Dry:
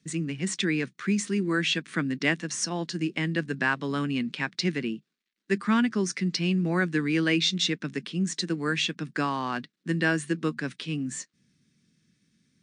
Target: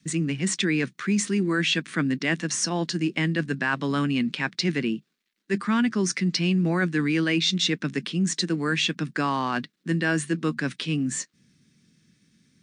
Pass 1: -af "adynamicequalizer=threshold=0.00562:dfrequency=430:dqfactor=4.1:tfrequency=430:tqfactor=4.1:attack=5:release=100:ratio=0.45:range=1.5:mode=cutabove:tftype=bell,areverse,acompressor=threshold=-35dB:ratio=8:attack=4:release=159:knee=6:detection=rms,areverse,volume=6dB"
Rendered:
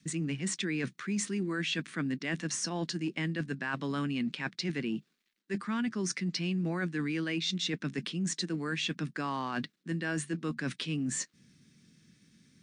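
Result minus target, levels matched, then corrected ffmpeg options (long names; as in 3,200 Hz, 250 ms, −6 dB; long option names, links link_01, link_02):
downward compressor: peak gain reduction +10 dB
-af "adynamicequalizer=threshold=0.00562:dfrequency=430:dqfactor=4.1:tfrequency=430:tqfactor=4.1:attack=5:release=100:ratio=0.45:range=1.5:mode=cutabove:tftype=bell,areverse,acompressor=threshold=-23.5dB:ratio=8:attack=4:release=159:knee=6:detection=rms,areverse,volume=6dB"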